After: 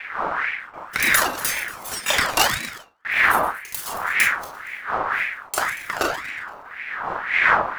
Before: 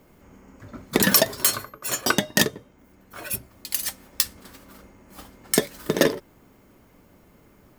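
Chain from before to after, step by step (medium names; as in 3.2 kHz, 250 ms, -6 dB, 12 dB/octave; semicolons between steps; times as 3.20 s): backward echo that repeats 117 ms, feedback 48%, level -12.5 dB; wind noise 340 Hz -22 dBFS; gate with hold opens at -26 dBFS; de-hum 110.3 Hz, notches 39; 2.08–3.26 s: waveshaping leveller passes 2; on a send at -2 dB: reverberation RT60 0.30 s, pre-delay 26 ms; on the sum: ring modulator with a swept carrier 1.5 kHz, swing 40%, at 1.9 Hz; trim -2.5 dB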